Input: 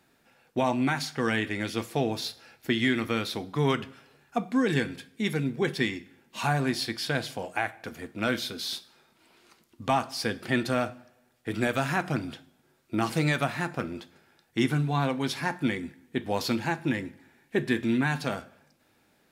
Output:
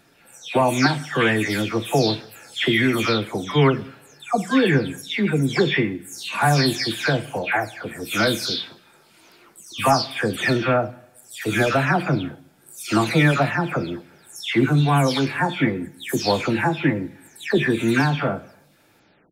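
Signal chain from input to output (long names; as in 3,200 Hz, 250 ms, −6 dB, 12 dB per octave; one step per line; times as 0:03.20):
every frequency bin delayed by itself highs early, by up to 318 ms
level +9 dB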